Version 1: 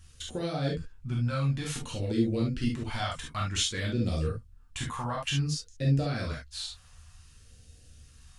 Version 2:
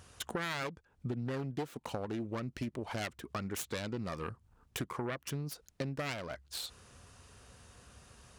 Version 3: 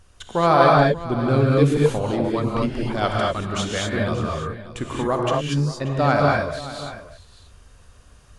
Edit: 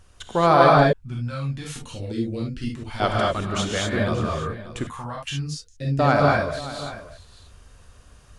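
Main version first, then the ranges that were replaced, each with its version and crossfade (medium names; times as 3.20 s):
3
0.93–3.00 s: from 1
4.87–5.99 s: from 1
not used: 2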